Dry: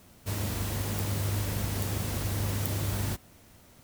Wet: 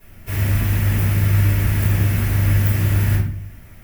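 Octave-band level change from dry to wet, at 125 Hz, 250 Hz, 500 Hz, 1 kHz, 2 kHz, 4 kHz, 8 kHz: +15.5, +10.0, +5.5, +6.0, +12.5, +4.0, +2.5 dB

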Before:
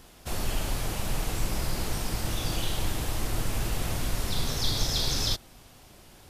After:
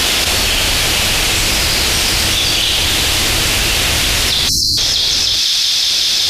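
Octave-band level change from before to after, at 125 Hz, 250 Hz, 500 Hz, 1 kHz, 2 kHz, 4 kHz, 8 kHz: +9.0, +10.5, +13.5, +14.5, +23.0, +23.0, +20.5 dB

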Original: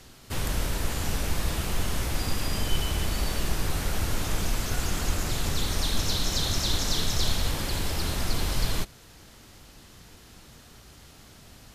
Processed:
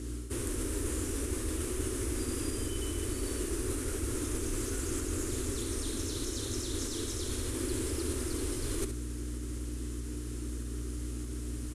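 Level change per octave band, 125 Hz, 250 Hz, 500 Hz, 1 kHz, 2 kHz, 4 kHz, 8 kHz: -6.0, +0.5, 0.0, -12.0, -10.5, -12.5, -2.5 dB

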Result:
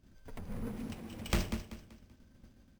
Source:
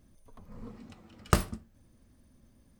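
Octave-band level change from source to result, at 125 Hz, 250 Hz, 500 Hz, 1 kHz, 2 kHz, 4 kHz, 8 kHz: -5.0, -0.5, -5.5, -11.0, -4.5, -1.0, -6.0 dB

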